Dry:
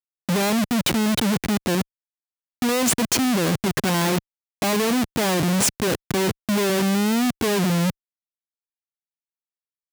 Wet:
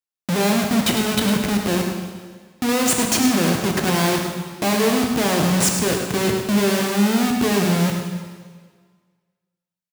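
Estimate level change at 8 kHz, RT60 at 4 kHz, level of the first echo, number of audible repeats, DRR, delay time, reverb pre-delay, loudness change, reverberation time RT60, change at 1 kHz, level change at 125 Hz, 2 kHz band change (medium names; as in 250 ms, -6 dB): +2.5 dB, 1.5 s, -8.0 dB, 1, 1.0 dB, 105 ms, 7 ms, +2.0 dB, 1.6 s, +2.5 dB, +2.0 dB, +2.5 dB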